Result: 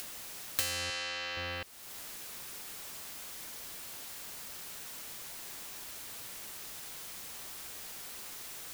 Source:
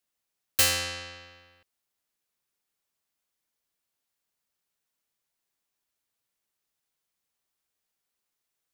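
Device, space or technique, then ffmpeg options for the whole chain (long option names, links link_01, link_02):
upward and downward compression: -filter_complex "[0:a]acompressor=mode=upward:threshold=-44dB:ratio=2.5,acompressor=threshold=-50dB:ratio=8,asettb=1/sr,asplit=3[link_01][link_02][link_03];[link_01]atrim=end=0.904[link_04];[link_02]atrim=start=0.9:end=1.37,asetpts=PTS-STARTPTS,afade=type=in:duration=0.004:curve=qsin,afade=type=out:start_time=0.466:duration=0.004:curve=qsin,highpass=frequency=610:poles=1[link_05];[link_03]atrim=start=1.366[link_06];[link_04][link_05]acrossfade=duration=0.004:curve1=hsin:curve2=qsin[link_07];[link_07][link_06]acrossfade=duration=0.004:curve1=qsin:curve2=hsin,volume=17.5dB"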